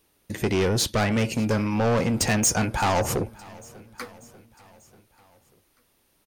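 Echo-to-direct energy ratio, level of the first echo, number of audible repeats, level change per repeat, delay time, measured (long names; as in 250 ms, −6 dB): −21.0 dB, −23.0 dB, 3, −4.5 dB, 591 ms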